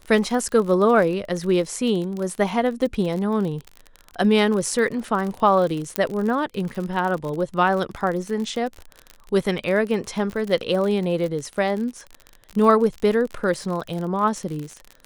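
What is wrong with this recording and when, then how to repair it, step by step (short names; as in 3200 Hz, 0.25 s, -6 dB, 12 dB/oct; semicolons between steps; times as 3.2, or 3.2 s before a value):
crackle 45/s -27 dBFS
5.96 pop -5 dBFS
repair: de-click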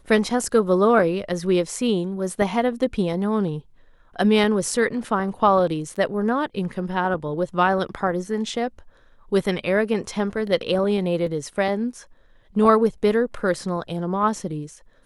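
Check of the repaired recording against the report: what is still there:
5.96 pop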